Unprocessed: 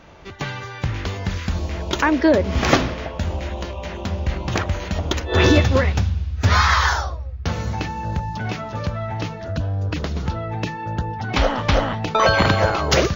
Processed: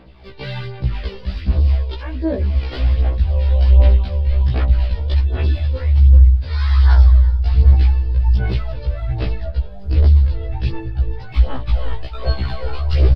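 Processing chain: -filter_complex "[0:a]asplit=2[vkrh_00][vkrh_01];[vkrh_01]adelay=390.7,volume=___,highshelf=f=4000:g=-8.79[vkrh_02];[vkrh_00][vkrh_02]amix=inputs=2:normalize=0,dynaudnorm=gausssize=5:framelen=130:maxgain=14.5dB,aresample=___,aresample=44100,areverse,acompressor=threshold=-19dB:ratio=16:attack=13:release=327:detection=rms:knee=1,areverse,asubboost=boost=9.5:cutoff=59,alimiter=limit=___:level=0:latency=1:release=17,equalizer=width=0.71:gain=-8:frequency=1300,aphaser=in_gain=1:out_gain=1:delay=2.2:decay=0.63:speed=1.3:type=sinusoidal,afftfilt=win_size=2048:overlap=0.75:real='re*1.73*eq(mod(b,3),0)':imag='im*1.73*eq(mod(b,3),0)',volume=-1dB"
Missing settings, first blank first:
-20dB, 11025, -10dB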